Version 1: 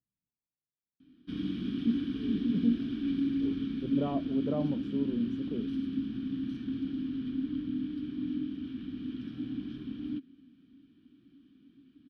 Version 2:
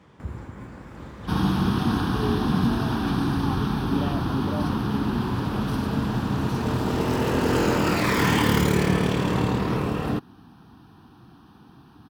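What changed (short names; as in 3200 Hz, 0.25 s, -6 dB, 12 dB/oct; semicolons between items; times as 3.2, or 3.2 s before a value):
first sound: unmuted; second sound: remove vowel filter i; master: add HPF 100 Hz 12 dB/oct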